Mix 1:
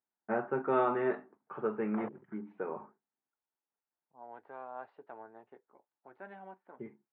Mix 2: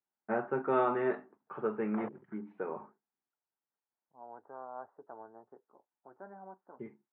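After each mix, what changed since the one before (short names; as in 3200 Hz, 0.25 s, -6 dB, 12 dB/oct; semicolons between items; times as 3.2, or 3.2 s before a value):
second voice: add steep low-pass 1400 Hz 36 dB/oct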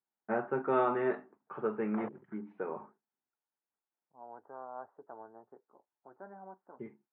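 none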